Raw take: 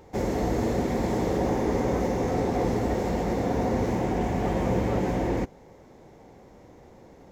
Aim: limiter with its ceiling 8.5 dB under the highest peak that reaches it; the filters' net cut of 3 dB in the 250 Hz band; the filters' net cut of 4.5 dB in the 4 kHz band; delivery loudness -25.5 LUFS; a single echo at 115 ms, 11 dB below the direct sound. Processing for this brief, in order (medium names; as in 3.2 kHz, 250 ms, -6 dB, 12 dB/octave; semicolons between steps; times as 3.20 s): peaking EQ 250 Hz -4 dB; peaking EQ 4 kHz -6 dB; peak limiter -22.5 dBFS; delay 115 ms -11 dB; trim +6 dB